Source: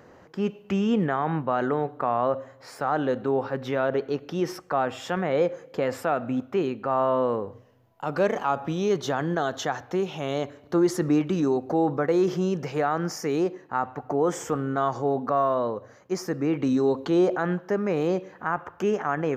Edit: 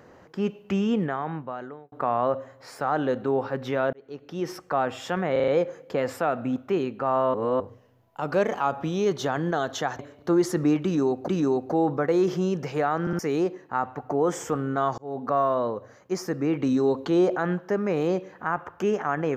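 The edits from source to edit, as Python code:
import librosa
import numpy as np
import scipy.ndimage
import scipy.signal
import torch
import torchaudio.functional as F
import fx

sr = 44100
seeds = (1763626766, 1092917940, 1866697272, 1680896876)

y = fx.edit(x, sr, fx.fade_out_span(start_s=0.78, length_s=1.14),
    fx.fade_in_span(start_s=3.93, length_s=0.71),
    fx.stutter(start_s=5.32, slice_s=0.04, count=5),
    fx.reverse_span(start_s=7.18, length_s=0.26),
    fx.cut(start_s=9.83, length_s=0.61),
    fx.repeat(start_s=11.28, length_s=0.45, count=2),
    fx.stutter_over(start_s=13.01, slice_s=0.06, count=3),
    fx.fade_in_span(start_s=14.98, length_s=0.34), tone=tone)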